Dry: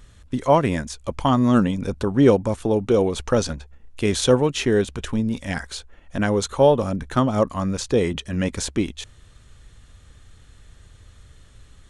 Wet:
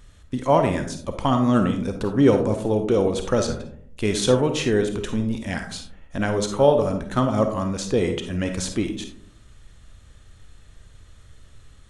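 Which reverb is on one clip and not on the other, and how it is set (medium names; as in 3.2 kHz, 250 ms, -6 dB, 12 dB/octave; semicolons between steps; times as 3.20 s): algorithmic reverb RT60 0.64 s, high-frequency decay 0.3×, pre-delay 10 ms, DRR 5.5 dB; trim -2 dB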